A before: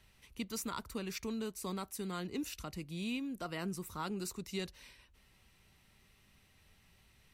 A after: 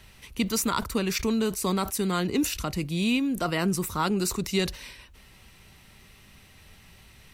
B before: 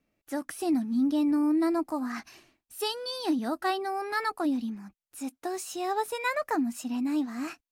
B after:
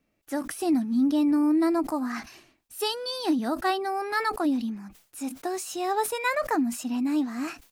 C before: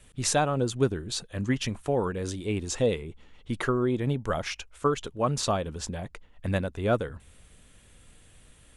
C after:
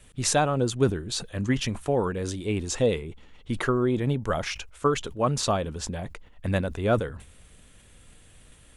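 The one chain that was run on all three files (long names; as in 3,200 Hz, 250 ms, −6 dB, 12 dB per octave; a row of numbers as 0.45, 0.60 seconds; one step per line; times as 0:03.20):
level that may fall only so fast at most 140 dB per second
loudness normalisation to −27 LKFS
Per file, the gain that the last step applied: +13.5, +2.5, +2.0 decibels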